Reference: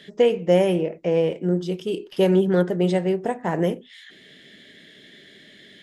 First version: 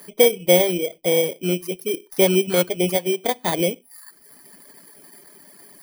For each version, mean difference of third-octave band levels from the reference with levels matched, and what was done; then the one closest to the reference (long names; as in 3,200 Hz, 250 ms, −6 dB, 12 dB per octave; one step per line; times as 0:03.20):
8.5 dB: samples in bit-reversed order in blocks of 16 samples
reverb reduction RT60 1.1 s
parametric band 140 Hz −7 dB 2.5 octaves
level +5 dB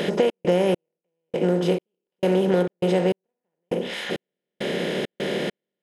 14.0 dB: compressor on every frequency bin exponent 0.4
downward compressor 3 to 1, threshold −21 dBFS, peak gain reduction 9 dB
gate pattern "xx.xx....xxx...x" 101 BPM −60 dB
level +2.5 dB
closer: first